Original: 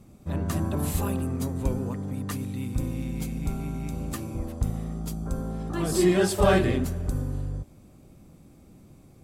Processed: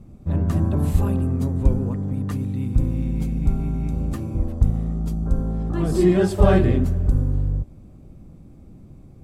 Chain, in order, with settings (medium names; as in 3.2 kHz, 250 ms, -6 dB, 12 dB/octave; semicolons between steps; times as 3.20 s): tilt EQ -2.5 dB/octave